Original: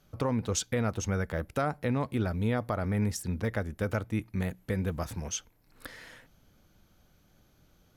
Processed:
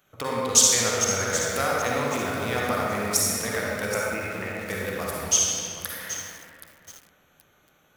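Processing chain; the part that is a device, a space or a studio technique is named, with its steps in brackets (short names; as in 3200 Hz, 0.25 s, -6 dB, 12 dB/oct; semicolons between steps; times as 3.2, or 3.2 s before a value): Wiener smoothing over 9 samples; 3.86–4.55 elliptic low-pass 2700 Hz; tilt +4.5 dB/oct; stairwell (reverb RT60 2.7 s, pre-delay 41 ms, DRR -4.5 dB); lo-fi delay 0.776 s, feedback 35%, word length 6-bit, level -11.5 dB; gain +3 dB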